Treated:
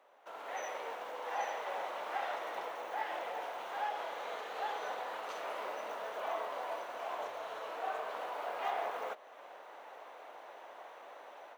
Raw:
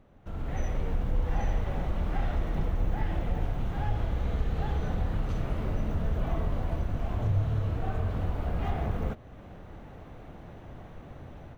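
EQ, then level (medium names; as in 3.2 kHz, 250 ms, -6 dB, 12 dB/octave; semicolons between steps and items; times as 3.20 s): high-pass 540 Hz 24 dB/octave; peaking EQ 970 Hz +5 dB 0.22 oct; +2.0 dB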